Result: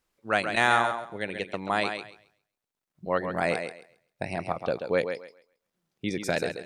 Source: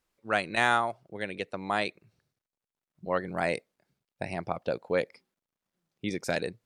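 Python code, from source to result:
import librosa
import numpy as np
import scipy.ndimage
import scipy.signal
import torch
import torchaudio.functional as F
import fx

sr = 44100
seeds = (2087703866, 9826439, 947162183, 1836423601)

y = fx.echo_thinned(x, sr, ms=135, feedback_pct=22, hz=190.0, wet_db=-7.0)
y = y * 10.0 ** (2.0 / 20.0)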